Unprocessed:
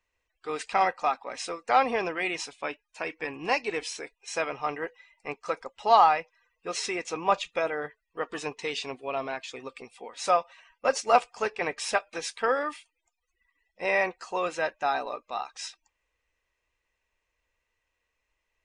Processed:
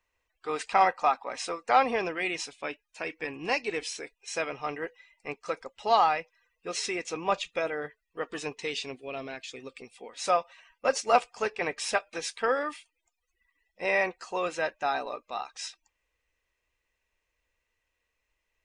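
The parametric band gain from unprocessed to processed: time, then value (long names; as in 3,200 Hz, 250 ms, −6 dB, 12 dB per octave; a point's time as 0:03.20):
parametric band 960 Hz 1.2 octaves
0:01.54 +2.5 dB
0:02.19 −5 dB
0:08.62 −5 dB
0:09.03 −12.5 dB
0:09.58 −12.5 dB
0:10.37 −2.5 dB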